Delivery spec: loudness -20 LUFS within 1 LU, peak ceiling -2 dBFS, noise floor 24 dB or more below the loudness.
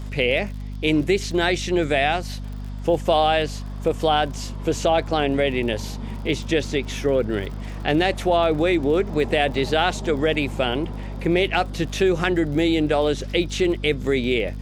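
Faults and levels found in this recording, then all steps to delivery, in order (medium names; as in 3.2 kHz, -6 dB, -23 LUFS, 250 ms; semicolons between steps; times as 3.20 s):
tick rate 42 per s; hum 50 Hz; highest harmonic 250 Hz; hum level -29 dBFS; loudness -22.0 LUFS; peak level -4.5 dBFS; loudness target -20.0 LUFS
-> de-click; de-hum 50 Hz, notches 5; trim +2 dB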